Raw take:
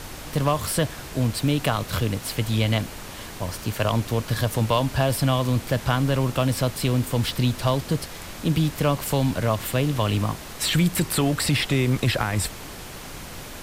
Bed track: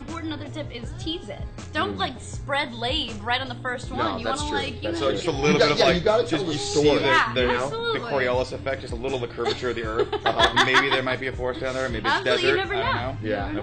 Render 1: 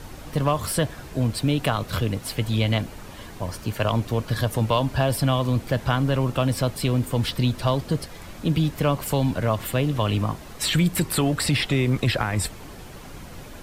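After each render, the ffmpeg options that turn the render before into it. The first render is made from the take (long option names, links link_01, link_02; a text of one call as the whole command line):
ffmpeg -i in.wav -af "afftdn=noise_reduction=8:noise_floor=-38" out.wav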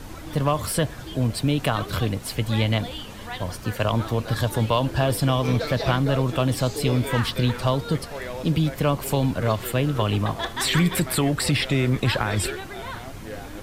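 ffmpeg -i in.wav -i bed.wav -filter_complex "[1:a]volume=-11dB[link_01];[0:a][link_01]amix=inputs=2:normalize=0" out.wav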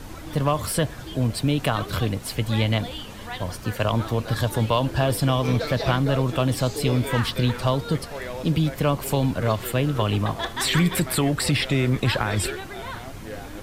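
ffmpeg -i in.wav -af anull out.wav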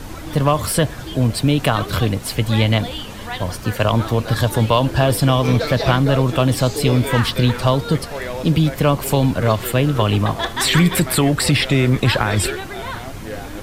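ffmpeg -i in.wav -af "volume=6dB" out.wav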